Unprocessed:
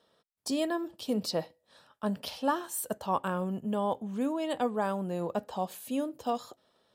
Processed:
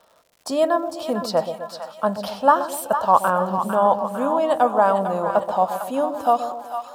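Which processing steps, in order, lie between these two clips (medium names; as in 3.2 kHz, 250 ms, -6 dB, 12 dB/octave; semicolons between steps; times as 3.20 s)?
high-order bell 920 Hz +11.5 dB; crackle 190 per s -47 dBFS; two-band feedback delay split 720 Hz, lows 127 ms, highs 452 ms, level -8 dB; trim +3.5 dB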